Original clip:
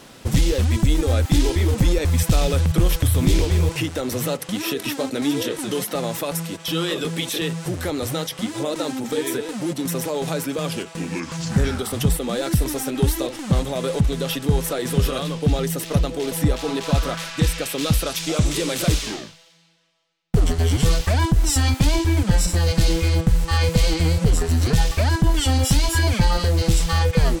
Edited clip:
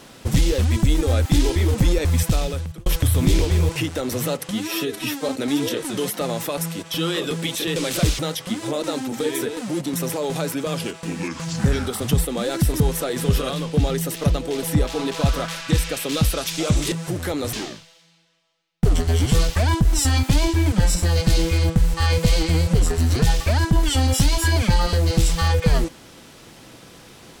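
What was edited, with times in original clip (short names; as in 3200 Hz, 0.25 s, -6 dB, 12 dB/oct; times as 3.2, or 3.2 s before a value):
2.17–2.86 fade out
4.51–5.03 stretch 1.5×
7.5–8.11 swap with 18.61–19.04
12.72–14.49 cut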